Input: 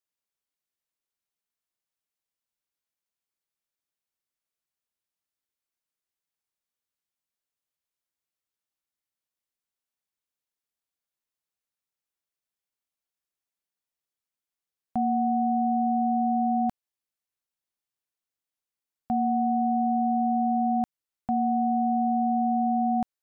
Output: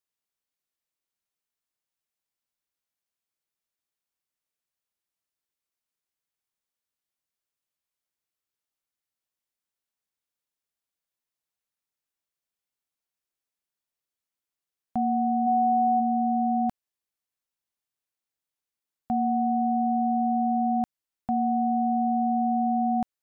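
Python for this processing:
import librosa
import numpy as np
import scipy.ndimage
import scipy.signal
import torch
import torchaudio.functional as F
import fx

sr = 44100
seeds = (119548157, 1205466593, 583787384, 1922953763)

y = fx.comb(x, sr, ms=2.7, depth=0.76, at=(15.46, 15.99), fade=0.02)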